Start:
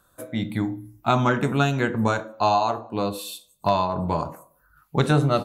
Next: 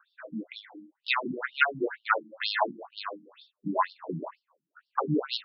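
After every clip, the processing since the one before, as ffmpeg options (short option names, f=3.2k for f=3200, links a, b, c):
-af "equalizer=f=250:t=o:w=0.67:g=-11,equalizer=f=1.6k:t=o:w=0.67:g=6,equalizer=f=10k:t=o:w=0.67:g=10,aeval=exprs='0.794*(cos(1*acos(clip(val(0)/0.794,-1,1)))-cos(1*PI/2))+0.126*(cos(6*acos(clip(val(0)/0.794,-1,1)))-cos(6*PI/2))':c=same,afftfilt=real='re*between(b*sr/1024,220*pow(4000/220,0.5+0.5*sin(2*PI*2.1*pts/sr))/1.41,220*pow(4000/220,0.5+0.5*sin(2*PI*2.1*pts/sr))*1.41)':imag='im*between(b*sr/1024,220*pow(4000/220,0.5+0.5*sin(2*PI*2.1*pts/sr))/1.41,220*pow(4000/220,0.5+0.5*sin(2*PI*2.1*pts/sr))*1.41)':win_size=1024:overlap=0.75,volume=1dB"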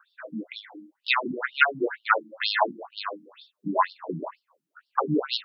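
-af "highpass=f=190:p=1,volume=4dB"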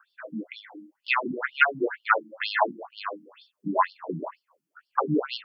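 -filter_complex "[0:a]bandreject=f=3.8k:w=5.2,acrossover=split=4500[a][b];[b]acompressor=threshold=-53dB:ratio=4:attack=1:release=60[c];[a][c]amix=inputs=2:normalize=0"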